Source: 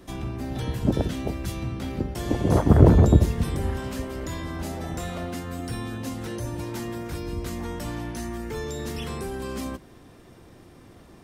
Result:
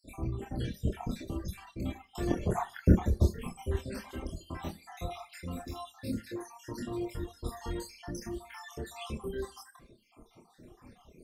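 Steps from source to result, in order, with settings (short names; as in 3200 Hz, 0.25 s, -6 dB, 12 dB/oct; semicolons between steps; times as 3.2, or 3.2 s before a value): random spectral dropouts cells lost 71%; Schroeder reverb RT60 0.38 s, combs from 33 ms, DRR 6 dB; chorus voices 6, 0.38 Hz, delay 26 ms, depth 2.8 ms; reverb removal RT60 0.83 s; 7.49–8.22 bell 5300 Hz +13 dB -> +6 dB 0.68 oct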